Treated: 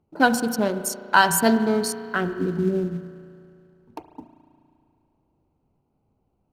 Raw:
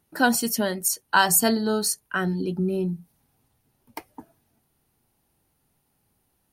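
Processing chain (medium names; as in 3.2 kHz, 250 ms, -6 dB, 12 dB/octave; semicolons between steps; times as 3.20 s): local Wiener filter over 25 samples; hum notches 60/120/180/240 Hz; spring tank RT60 2.5 s, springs 35 ms, chirp 35 ms, DRR 10.5 dB; in parallel at -6.5 dB: short-mantissa float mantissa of 2-bit; on the sum: treble shelf 6.7 kHz -10 dB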